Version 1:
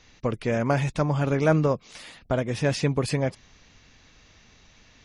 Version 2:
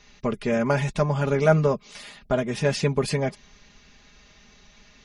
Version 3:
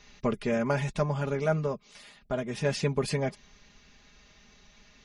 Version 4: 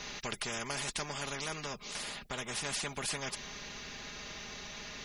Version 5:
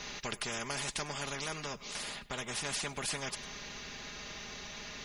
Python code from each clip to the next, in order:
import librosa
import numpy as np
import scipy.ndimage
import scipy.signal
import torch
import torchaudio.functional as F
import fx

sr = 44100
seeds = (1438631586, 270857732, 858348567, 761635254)

y1 = x + 0.68 * np.pad(x, (int(4.9 * sr / 1000.0), 0))[:len(x)]
y2 = fx.rider(y1, sr, range_db=4, speed_s=0.5)
y2 = y2 * librosa.db_to_amplitude(-5.0)
y3 = fx.spectral_comp(y2, sr, ratio=4.0)
y3 = y3 * librosa.db_to_amplitude(-5.5)
y4 = y3 + 10.0 ** (-20.5 / 20.0) * np.pad(y3, (int(101 * sr / 1000.0), 0))[:len(y3)]